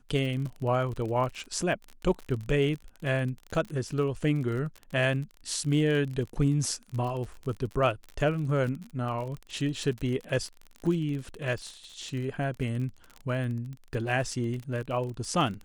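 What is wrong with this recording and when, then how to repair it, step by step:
surface crackle 39 per second −34 dBFS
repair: click removal

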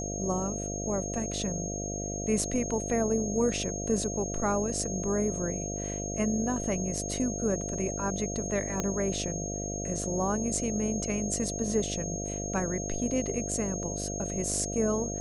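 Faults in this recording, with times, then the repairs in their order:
mains buzz 50 Hz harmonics 14 −36 dBFS
whistle 6,500 Hz −36 dBFS
0:08.80: click −15 dBFS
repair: click removal
notch filter 6,500 Hz, Q 30
hum removal 50 Hz, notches 14

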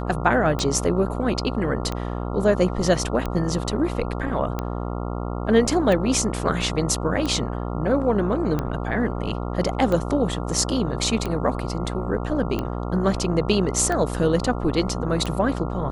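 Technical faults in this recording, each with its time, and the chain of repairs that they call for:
mains buzz 60 Hz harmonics 23 −28 dBFS
scratch tick 45 rpm −13 dBFS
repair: click removal
hum removal 60 Hz, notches 23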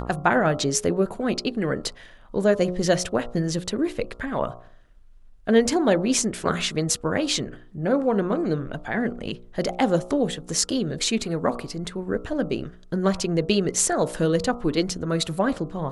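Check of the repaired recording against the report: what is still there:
none of them is left

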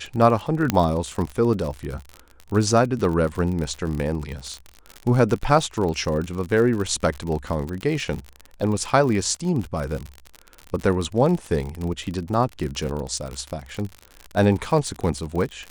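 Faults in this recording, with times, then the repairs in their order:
surface crackle 57 per second −27 dBFS
0:00.70: click −5 dBFS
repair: click removal

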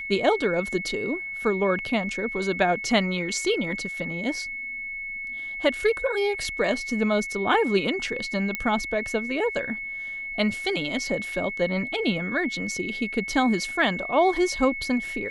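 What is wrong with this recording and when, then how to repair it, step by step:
whistle 2,200 Hz −31 dBFS
0:08.55: click −12 dBFS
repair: click removal
notch filter 2,200 Hz, Q 30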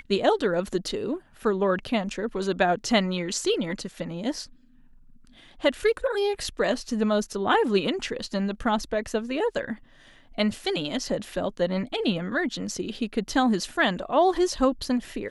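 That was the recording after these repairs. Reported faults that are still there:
none of them is left

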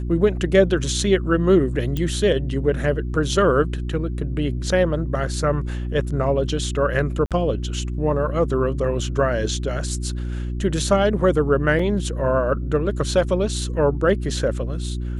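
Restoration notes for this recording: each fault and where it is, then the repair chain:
mains hum 60 Hz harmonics 6 −26 dBFS
0:01.97: click −13 dBFS
0:07.26–0:07.31: drop-out 47 ms
0:11.79: drop-out 4.1 ms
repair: click removal
hum removal 60 Hz, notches 6
repair the gap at 0:07.26, 47 ms
repair the gap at 0:11.79, 4.1 ms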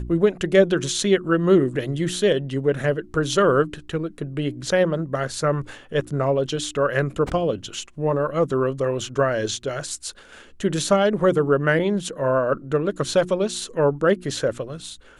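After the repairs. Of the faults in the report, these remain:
none of them is left

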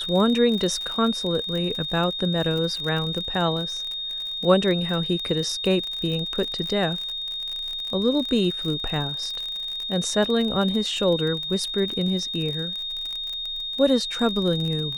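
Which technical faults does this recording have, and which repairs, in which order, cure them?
surface crackle 45 per second −28 dBFS
whistle 3,700 Hz −28 dBFS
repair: click removal
notch filter 3,700 Hz, Q 30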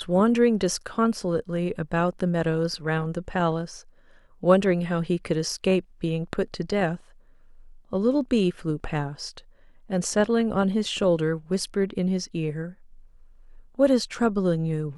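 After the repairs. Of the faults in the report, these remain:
none of them is left

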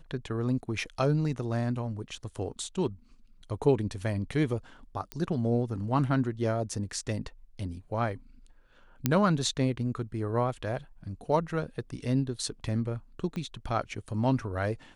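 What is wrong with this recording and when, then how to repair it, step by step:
0:05.12: click −19 dBFS
0:09.06: click −10 dBFS
0:13.36: click −24 dBFS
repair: click removal

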